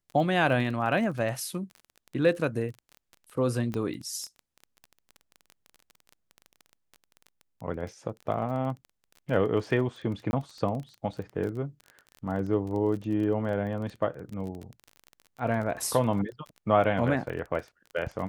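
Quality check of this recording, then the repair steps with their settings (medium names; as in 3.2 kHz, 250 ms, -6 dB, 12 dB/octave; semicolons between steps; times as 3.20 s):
crackle 24 per s -35 dBFS
3.74 s: pop -19 dBFS
10.31–10.33 s: dropout 21 ms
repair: de-click; interpolate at 10.31 s, 21 ms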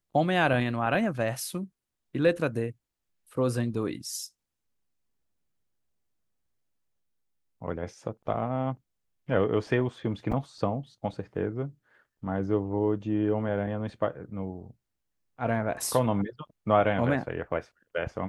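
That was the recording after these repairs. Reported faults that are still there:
nothing left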